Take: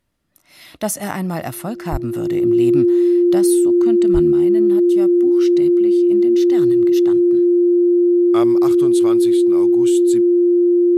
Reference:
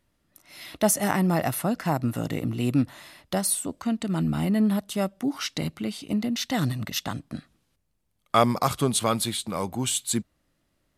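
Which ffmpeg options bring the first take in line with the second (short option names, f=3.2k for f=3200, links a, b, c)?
-filter_complex "[0:a]bandreject=f=350:w=30,asplit=3[a][b][c];[a]afade=t=out:st=1.91:d=0.02[d];[b]highpass=f=140:w=0.5412,highpass=f=140:w=1.3066,afade=t=in:st=1.91:d=0.02,afade=t=out:st=2.03:d=0.02[e];[c]afade=t=in:st=2.03:d=0.02[f];[d][e][f]amix=inputs=3:normalize=0,asplit=3[g][h][i];[g]afade=t=out:st=4.13:d=0.02[j];[h]highpass=f=140:w=0.5412,highpass=f=140:w=1.3066,afade=t=in:st=4.13:d=0.02,afade=t=out:st=4.25:d=0.02[k];[i]afade=t=in:st=4.25:d=0.02[l];[j][k][l]amix=inputs=3:normalize=0,asetnsamples=n=441:p=0,asendcmd='4.32 volume volume 5.5dB',volume=0dB"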